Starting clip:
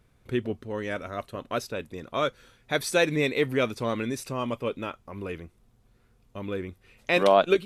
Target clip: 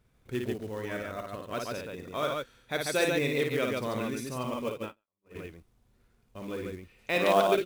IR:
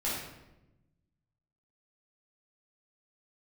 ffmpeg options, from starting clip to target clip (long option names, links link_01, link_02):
-filter_complex "[0:a]aecho=1:1:55.39|142.9:0.631|0.708,acrusher=bits=5:mode=log:mix=0:aa=0.000001,asplit=3[link_01][link_02][link_03];[link_01]afade=type=out:start_time=4.76:duration=0.02[link_04];[link_02]agate=range=-49dB:threshold=-28dB:ratio=16:detection=peak,afade=type=in:start_time=4.76:duration=0.02,afade=type=out:start_time=5.34:duration=0.02[link_05];[link_03]afade=type=in:start_time=5.34:duration=0.02[link_06];[link_04][link_05][link_06]amix=inputs=3:normalize=0,volume=-6dB"